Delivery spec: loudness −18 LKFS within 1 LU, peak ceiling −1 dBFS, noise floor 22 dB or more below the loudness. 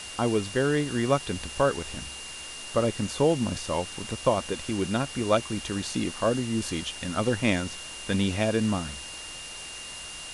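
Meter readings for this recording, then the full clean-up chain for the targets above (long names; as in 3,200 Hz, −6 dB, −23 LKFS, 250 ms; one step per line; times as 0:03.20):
interfering tone 2,800 Hz; level of the tone −41 dBFS; background noise floor −40 dBFS; target noise floor −50 dBFS; integrated loudness −28.0 LKFS; sample peak −8.5 dBFS; target loudness −18.0 LKFS
→ notch filter 2,800 Hz, Q 30
noise reduction from a noise print 10 dB
level +10 dB
brickwall limiter −1 dBFS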